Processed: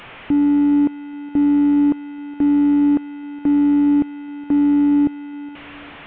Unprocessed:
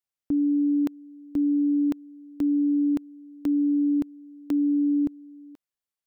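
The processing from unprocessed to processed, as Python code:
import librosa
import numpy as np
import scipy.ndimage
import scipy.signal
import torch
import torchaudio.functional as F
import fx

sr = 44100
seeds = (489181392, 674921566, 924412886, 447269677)

p1 = fx.delta_mod(x, sr, bps=16000, step_db=-40.0)
p2 = p1 + fx.echo_feedback(p1, sr, ms=415, feedback_pct=43, wet_db=-23, dry=0)
y = p2 * 10.0 ** (8.0 / 20.0)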